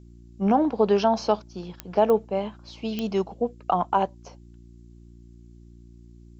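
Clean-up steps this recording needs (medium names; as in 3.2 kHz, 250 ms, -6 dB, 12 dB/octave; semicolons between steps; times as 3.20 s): de-click; de-hum 58.4 Hz, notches 6; expander -41 dBFS, range -21 dB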